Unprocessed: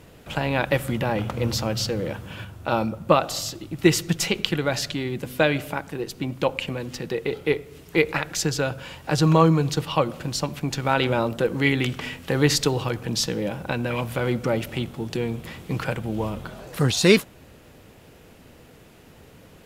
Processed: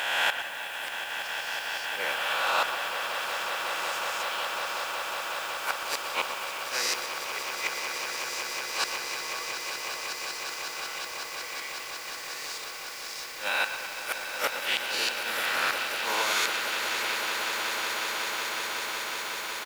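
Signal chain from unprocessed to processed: reverse spectral sustain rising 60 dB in 2.09 s; high-pass 1.2 kHz 12 dB/octave; inverted gate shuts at -18 dBFS, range -25 dB; speakerphone echo 120 ms, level -11 dB; in parallel at -3.5 dB: word length cut 8-bit, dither triangular; on the sum: echo with a slow build-up 184 ms, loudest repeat 8, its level -10 dB; on a send at -10.5 dB: reverberation RT60 2.3 s, pre-delay 105 ms

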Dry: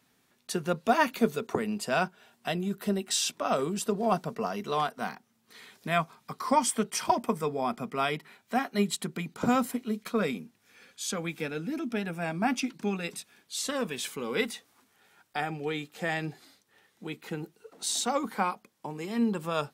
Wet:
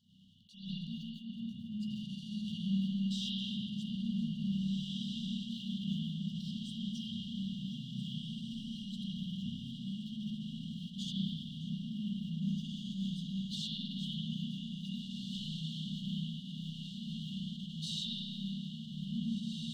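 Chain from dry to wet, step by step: chunks repeated in reverse 668 ms, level -12 dB; FFT filter 150 Hz 0 dB, 310 Hz +10 dB, 990 Hz -19 dB, 2.1 kHz +10 dB, 11 kHz -26 dB; compression 8:1, threshold -43 dBFS, peak gain reduction 27 dB; waveshaping leveller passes 1; brick-wall FIR band-stop 230–2800 Hz; echo that smears into a reverb 1907 ms, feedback 62%, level -4 dB; spring tank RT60 1.9 s, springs 31/52 ms, chirp 75 ms, DRR -9 dB; attacks held to a fixed rise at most 110 dB/s

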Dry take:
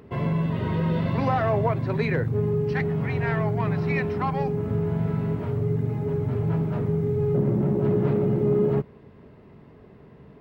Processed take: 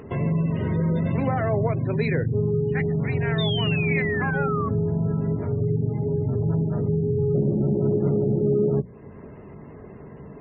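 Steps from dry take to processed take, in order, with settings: hum notches 60/120/180/240 Hz; spectral gate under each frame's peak -30 dB strong; dynamic bell 1 kHz, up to -8 dB, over -43 dBFS, Q 1.3; in parallel at +3 dB: compression, threshold -38 dBFS, peak gain reduction 18 dB; on the sum: painted sound fall, 3.38–4.69 s, 1.1–3.7 kHz -30 dBFS

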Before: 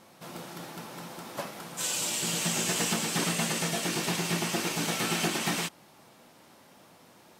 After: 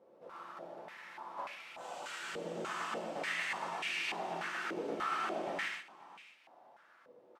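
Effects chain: on a send: delay 535 ms -19 dB; on the sum: gated-style reverb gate 170 ms flat, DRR -2 dB; step-sequenced band-pass 3.4 Hz 480–2400 Hz

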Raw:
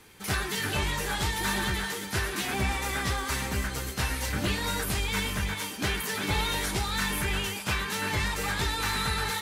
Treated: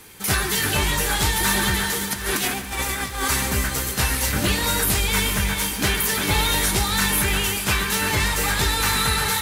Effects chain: 2.11–3.28 s: compressor with a negative ratio -33 dBFS, ratio -0.5; treble shelf 8.1 kHz +10 dB; bit-crushed delay 141 ms, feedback 80%, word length 8-bit, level -13.5 dB; trim +6.5 dB

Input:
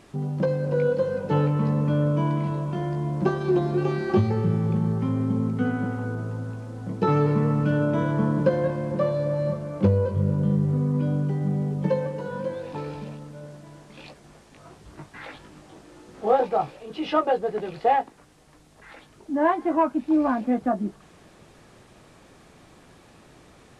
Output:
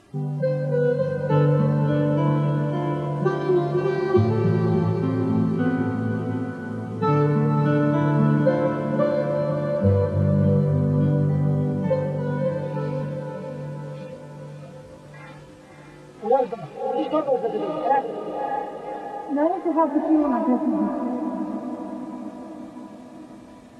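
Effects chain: harmonic-percussive separation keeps harmonic; echo that smears into a reverb 601 ms, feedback 57%, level -5 dB; trim +1.5 dB

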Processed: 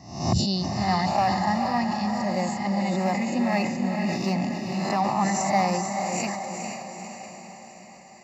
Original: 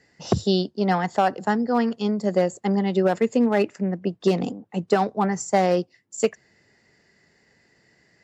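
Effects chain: reverse spectral sustain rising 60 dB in 0.63 s; treble shelf 6.1 kHz +5.5 dB; static phaser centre 2.2 kHz, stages 8; echo that smears into a reverb 459 ms, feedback 57%, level -5 dB; decay stretcher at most 41 dB/s; trim -2 dB

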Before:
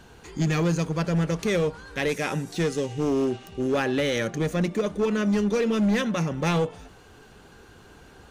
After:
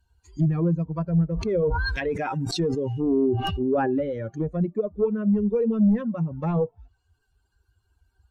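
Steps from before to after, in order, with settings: expander on every frequency bin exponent 2; low-pass that closes with the level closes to 700 Hz, closed at -28 dBFS; 1.29–3.99 s: decay stretcher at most 22 dB/s; trim +5 dB

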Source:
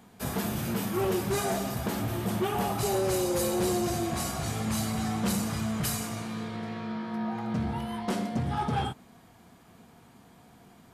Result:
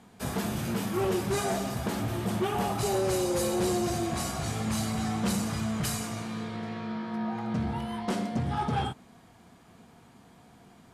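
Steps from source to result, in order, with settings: low-pass 11 kHz 12 dB/octave

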